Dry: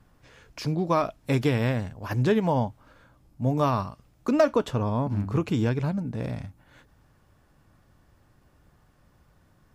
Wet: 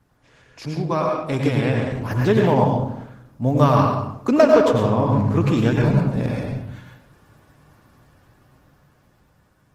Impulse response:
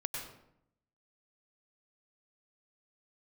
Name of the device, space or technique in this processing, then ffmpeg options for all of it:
far-field microphone of a smart speaker: -filter_complex "[1:a]atrim=start_sample=2205[s0];[0:a][s0]afir=irnorm=-1:irlink=0,highpass=f=100:p=1,dynaudnorm=f=550:g=7:m=2.51,volume=1.12" -ar 48000 -c:a libopus -b:a 16k

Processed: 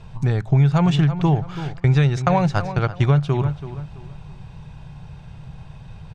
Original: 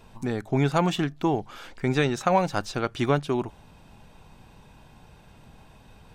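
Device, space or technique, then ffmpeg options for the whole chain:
jukebox: -filter_complex "[0:a]asplit=3[s0][s1][s2];[s0]afade=t=out:st=1.78:d=0.02[s3];[s1]agate=range=0.1:threshold=0.0316:ratio=16:detection=peak,afade=t=in:st=1.78:d=0.02,afade=t=out:st=3.13:d=0.02[s4];[s2]afade=t=in:st=3.13:d=0.02[s5];[s3][s4][s5]amix=inputs=3:normalize=0,lowpass=6300,lowshelf=f=190:t=q:w=3:g=7.5,asplit=2[s6][s7];[s7]adelay=331,lowpass=f=3300:p=1,volume=0.2,asplit=2[s8][s9];[s9]adelay=331,lowpass=f=3300:p=1,volume=0.31,asplit=2[s10][s11];[s11]adelay=331,lowpass=f=3300:p=1,volume=0.31[s12];[s6][s8][s10][s12]amix=inputs=4:normalize=0,acompressor=threshold=0.141:ratio=5,volume=1.68"

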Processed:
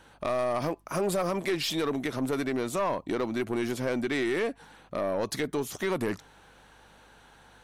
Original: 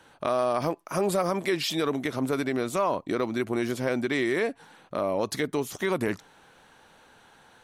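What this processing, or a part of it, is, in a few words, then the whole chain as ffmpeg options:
valve amplifier with mains hum: -af "aeval=exprs='(tanh(11.2*val(0)+0.15)-tanh(0.15))/11.2':c=same,aeval=exprs='val(0)+0.000708*(sin(2*PI*50*n/s)+sin(2*PI*2*50*n/s)/2+sin(2*PI*3*50*n/s)/3+sin(2*PI*4*50*n/s)/4+sin(2*PI*5*50*n/s)/5)':c=same"

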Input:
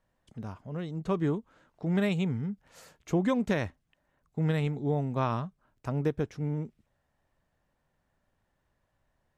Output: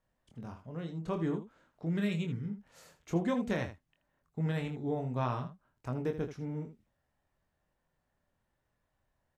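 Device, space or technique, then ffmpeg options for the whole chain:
slapback doubling: -filter_complex "[0:a]asplit=3[s0][s1][s2];[s1]adelay=24,volume=0.531[s3];[s2]adelay=80,volume=0.282[s4];[s0][s3][s4]amix=inputs=3:normalize=0,asettb=1/sr,asplit=3[s5][s6][s7];[s5]atrim=end=1.894[s8];[s6]atrim=start=1.89:end=2.49,asetpts=PTS-STARTPTS,afade=t=in:d=0.004:c=qsin,afade=t=out:st=0.596:d=0.004:c=qsin,equalizer=f=780:t=o:w=0.72:g=-13.5[s9];[s7]atrim=start=2.486[s10];[s8][s9]acrossfade=d=0.004:c1=hsin:c2=qsin[s11];[s11][s10]acrossfade=d=0.004:c1=qsin:c2=hsin,volume=0.531"

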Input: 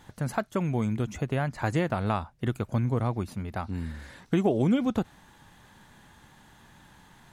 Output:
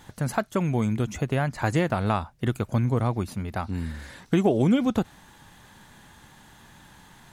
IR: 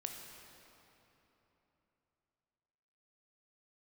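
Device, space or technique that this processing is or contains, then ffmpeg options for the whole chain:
exciter from parts: -filter_complex "[0:a]asplit=2[s0][s1];[s1]highpass=f=4700:p=1,asoftclip=type=tanh:threshold=0.0168,volume=0.531[s2];[s0][s2]amix=inputs=2:normalize=0,volume=1.41"

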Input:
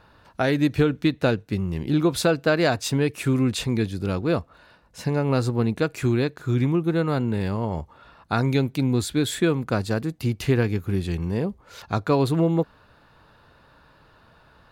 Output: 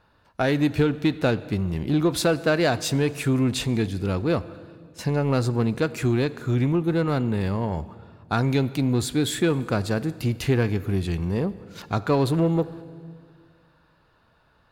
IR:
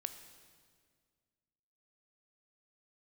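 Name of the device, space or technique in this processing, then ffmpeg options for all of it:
saturated reverb return: -filter_complex "[0:a]agate=range=0.355:threshold=0.00708:ratio=16:detection=peak,asplit=2[s0][s1];[1:a]atrim=start_sample=2205[s2];[s1][s2]afir=irnorm=-1:irlink=0,asoftclip=type=tanh:threshold=0.0531,volume=0.944[s3];[s0][s3]amix=inputs=2:normalize=0,volume=0.708"

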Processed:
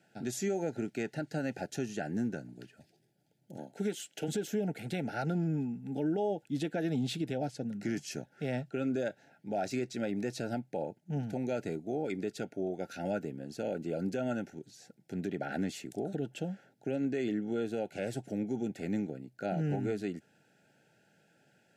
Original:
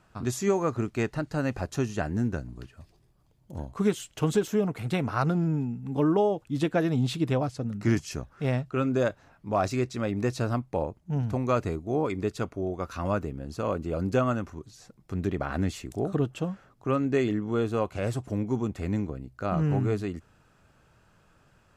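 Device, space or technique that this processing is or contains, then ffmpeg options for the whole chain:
PA system with an anti-feedback notch: -filter_complex "[0:a]asettb=1/sr,asplit=3[s0][s1][s2];[s0]atrim=end=3.564[s3];[s1]atrim=start=3.56:end=4.28,asetpts=PTS-STARTPTS,afade=t=in:d=0.004:c=qsin,afade=t=out:st=0.716:d=0.004:c=qsin,highpass=200[s4];[s2]atrim=start=4.276[s5];[s3][s4]acrossfade=d=0.004:c1=hsin:c2=qsin[s6];[s6][s5]acrossfade=d=0.004:c1=qsin:c2=hsin,highpass=f=150:w=0.5412,highpass=f=150:w=1.3066,asuperstop=centerf=1100:order=20:qfactor=2.3,alimiter=limit=0.0841:level=0:latency=1:release=95,volume=0.708"

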